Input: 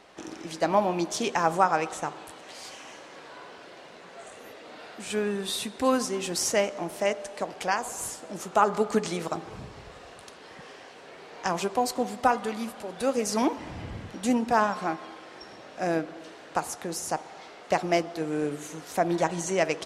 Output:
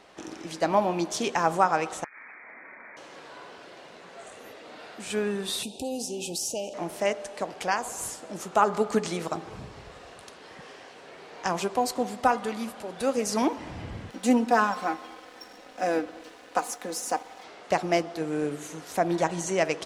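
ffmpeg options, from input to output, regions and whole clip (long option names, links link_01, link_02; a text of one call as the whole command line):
ffmpeg -i in.wav -filter_complex "[0:a]asettb=1/sr,asplit=3[link_01][link_02][link_03];[link_01]atrim=end=2.044[link_04];[link_02]atrim=start=2.04:end=2.97,asetpts=PTS-STARTPTS,afade=type=in:duration=0.004:curve=qsin,afade=type=out:start_time=0.926:duration=0.004:curve=qsin,lowpass=frequency=2200:width_type=q:width=0.5098,lowpass=frequency=2200:width_type=q:width=0.6013,lowpass=frequency=2200:width_type=q:width=0.9,lowpass=frequency=2200:width_type=q:width=2.563,afreqshift=-2600,acompressor=threshold=-41dB:ratio=16:attack=3.2:release=140:knee=1:detection=peak,lowshelf=frequency=150:width_type=q:width=1.5:gain=-12[link_05];[link_03]atrim=start=2.966[link_06];[link_04][link_05]acrossfade=duration=0.004:curve1=hsin:curve2=qsin[link_07];[link_07][link_06]acrossfade=duration=0.004:curve1=qsin:curve2=hsin,asettb=1/sr,asplit=3[link_08][link_09][link_10];[link_08]atrim=end=5.634[link_11];[link_09]atrim=start=5.63:end=6.74,asetpts=PTS-STARTPTS,afade=type=in:duration=0.004:curve=qsin,afade=type=out:start_time=1.106:duration=0.004:curve=qsin,highshelf=frequency=5000:gain=6.5,acompressor=threshold=-31dB:ratio=2.5:attack=3.2:release=140:knee=1:detection=peak,asuperstop=centerf=1500:order=20:qfactor=0.96[link_12];[link_10]atrim=start=6.736[link_13];[link_11][link_12]acrossfade=duration=0.004:curve1=hsin:curve2=qsin[link_14];[link_14][link_13]acrossfade=duration=0.004:curve1=qsin:curve2=hsin,asettb=1/sr,asplit=3[link_15][link_16][link_17];[link_15]atrim=end=14.114[link_18];[link_16]atrim=start=14.11:end=17.44,asetpts=PTS-STARTPTS,afade=type=in:duration=0.004:curve=qsin,afade=type=out:start_time=3.326:duration=0.004:curve=qsin,highpass=frequency=210:width=0.5412,highpass=frequency=210:width=1.3066,aecho=1:1:4:0.64,atrim=end_sample=146853,aeval=exprs='sgn(val(0))*max(abs(val(0))-0.00282,0)':channel_layout=same[link_19];[link_17]atrim=start=17.436[link_20];[link_18][link_19]acrossfade=duration=0.004:curve1=hsin:curve2=qsin[link_21];[link_21][link_20]acrossfade=duration=0.004:curve1=qsin:curve2=hsin" out.wav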